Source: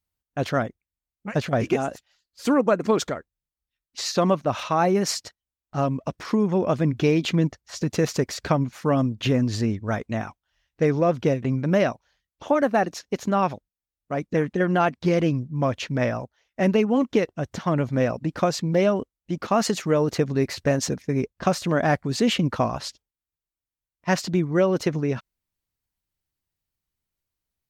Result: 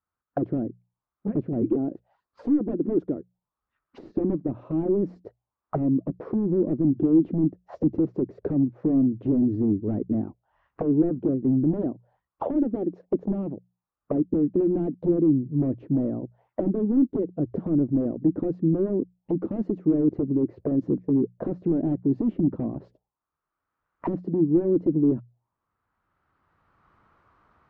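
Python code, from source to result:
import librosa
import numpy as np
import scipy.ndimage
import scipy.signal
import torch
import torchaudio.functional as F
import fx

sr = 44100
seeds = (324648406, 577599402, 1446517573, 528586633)

y = fx.recorder_agc(x, sr, target_db=-11.5, rise_db_per_s=15.0, max_gain_db=30)
y = fx.highpass(y, sr, hz=130.0, slope=6)
y = 10.0 ** (-18.5 / 20.0) * (np.abs((y / 10.0 ** (-18.5 / 20.0) + 3.0) % 4.0 - 2.0) - 1.0)
y = fx.hum_notches(y, sr, base_hz=60, count=3)
y = fx.envelope_lowpass(y, sr, base_hz=320.0, top_hz=1300.0, q=4.0, full_db=-24.5, direction='down')
y = y * 10.0 ** (-2.5 / 20.0)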